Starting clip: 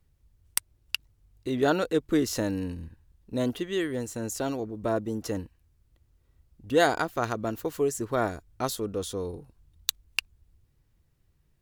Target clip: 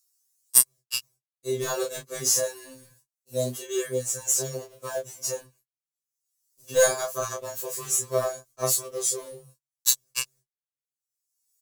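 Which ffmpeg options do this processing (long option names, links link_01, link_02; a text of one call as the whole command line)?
ffmpeg -i in.wav -filter_complex "[0:a]highpass=85,agate=range=-39dB:threshold=-54dB:ratio=16:detection=peak,equalizer=frequency=110:width_type=o:width=0.4:gain=-13,asplit=2[link_01][link_02];[link_02]aeval=exprs='clip(val(0),-1,0.133)':channel_layout=same,volume=-6dB[link_03];[link_01][link_03]amix=inputs=2:normalize=0,aecho=1:1:1.8:0.96,acrossover=split=180|3500[link_04][link_05][link_06];[link_06]acompressor=mode=upward:threshold=-46dB:ratio=2.5[link_07];[link_04][link_05][link_07]amix=inputs=3:normalize=0,highshelf=frequency=4500:width_type=q:width=1.5:gain=12.5,acrusher=bits=4:mode=log:mix=0:aa=0.000001,flanger=delay=22.5:depth=4.3:speed=0.21,afftfilt=real='re*2.45*eq(mod(b,6),0)':imag='im*2.45*eq(mod(b,6),0)':win_size=2048:overlap=0.75,volume=-1.5dB" out.wav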